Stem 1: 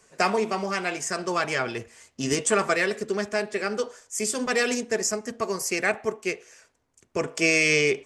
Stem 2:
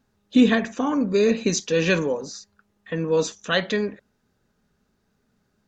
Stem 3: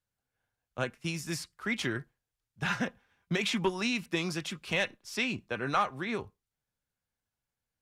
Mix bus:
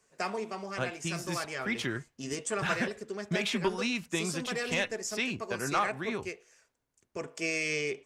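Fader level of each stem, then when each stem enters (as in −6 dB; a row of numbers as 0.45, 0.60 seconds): −11.0 dB, muted, −1.0 dB; 0.00 s, muted, 0.00 s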